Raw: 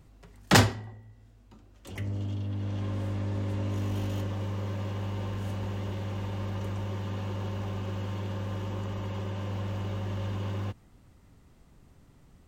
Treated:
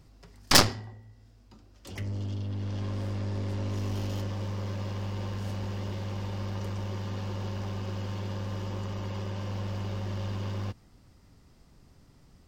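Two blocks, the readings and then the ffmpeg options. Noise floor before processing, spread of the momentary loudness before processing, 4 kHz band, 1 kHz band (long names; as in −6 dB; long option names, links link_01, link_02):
−58 dBFS, 4 LU, +5.0 dB, −0.5 dB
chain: -af "aeval=exprs='0.596*(cos(1*acos(clip(val(0)/0.596,-1,1)))-cos(1*PI/2))+0.119*(cos(5*acos(clip(val(0)/0.596,-1,1)))-cos(5*PI/2))+0.15*(cos(6*acos(clip(val(0)/0.596,-1,1)))-cos(6*PI/2))+0.299*(cos(7*acos(clip(val(0)/0.596,-1,1)))-cos(7*PI/2))':channel_layout=same,equalizer=frequency=5000:width_type=o:width=0.47:gain=9.5,volume=-4dB"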